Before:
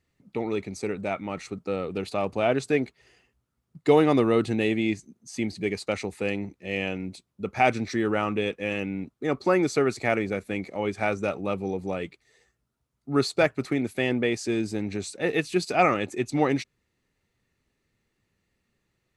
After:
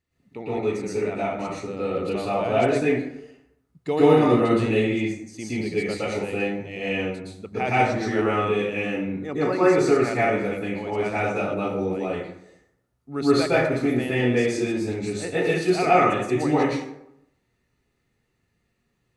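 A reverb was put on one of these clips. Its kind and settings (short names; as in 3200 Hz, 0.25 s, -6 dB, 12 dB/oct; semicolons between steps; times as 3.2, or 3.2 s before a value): plate-style reverb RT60 0.78 s, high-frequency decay 0.55×, pre-delay 0.105 s, DRR -9.5 dB; gain -7 dB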